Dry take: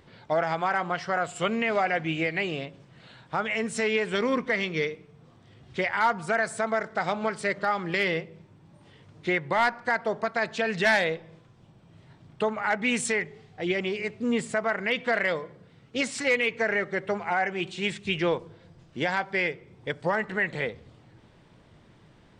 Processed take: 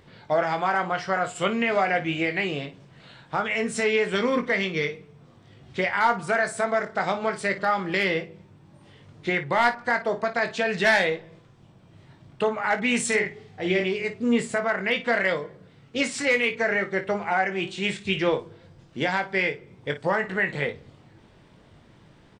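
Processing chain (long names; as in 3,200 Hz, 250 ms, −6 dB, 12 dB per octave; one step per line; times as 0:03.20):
0:13.07–0:13.84: double-tracking delay 50 ms −5.5 dB
ambience of single reflections 21 ms −7.5 dB, 55 ms −13.5 dB
level +1.5 dB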